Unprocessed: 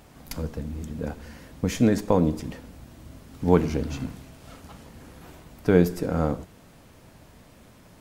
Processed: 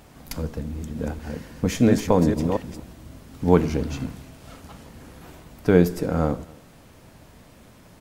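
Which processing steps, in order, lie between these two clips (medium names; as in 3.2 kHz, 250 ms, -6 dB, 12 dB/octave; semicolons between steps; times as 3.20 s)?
0.73–2.93 s: chunks repeated in reverse 230 ms, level -5 dB; echo from a far wall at 45 m, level -26 dB; trim +2 dB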